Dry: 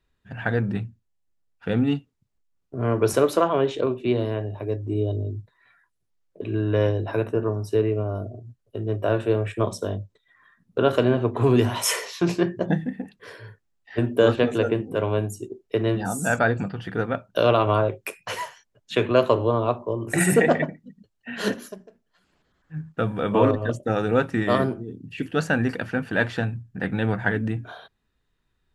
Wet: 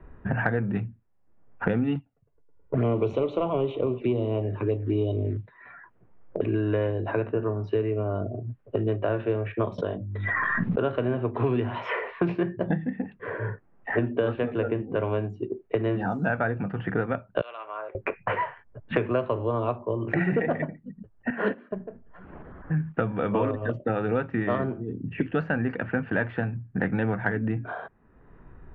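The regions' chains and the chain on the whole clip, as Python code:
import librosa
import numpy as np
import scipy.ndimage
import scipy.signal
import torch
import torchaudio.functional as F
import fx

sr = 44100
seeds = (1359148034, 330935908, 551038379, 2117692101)

y = fx.chain(x, sr, fx.echo_wet_bandpass(ms=107, feedback_pct=65, hz=820.0, wet_db=-21.0),
    fx.leveller(passes=1),
    fx.env_flanger(rest_ms=2.1, full_db=-18.5), at=(1.95, 5.37))
y = fx.chain(y, sr, fx.hum_notches(base_hz=50, count=7),
    fx.pre_swell(db_per_s=24.0), at=(9.78, 10.82))
y = fx.chain(y, sr, fx.bandpass_edges(low_hz=420.0, high_hz=4700.0),
    fx.differentiator(), at=(17.41, 17.95))
y = fx.chain(y, sr, fx.highpass(hz=250.0, slope=12),
    fx.high_shelf(hz=5800.0, db=-10.0),
    fx.upward_expand(threshold_db=-39.0, expansion=1.5), at=(21.3, 21.71))
y = scipy.signal.sosfilt(scipy.signal.butter(4, 2600.0, 'lowpass', fs=sr, output='sos'), y)
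y = fx.env_lowpass(y, sr, base_hz=1100.0, full_db=-18.5)
y = fx.band_squash(y, sr, depth_pct=100)
y = F.gain(torch.from_numpy(y), -4.0).numpy()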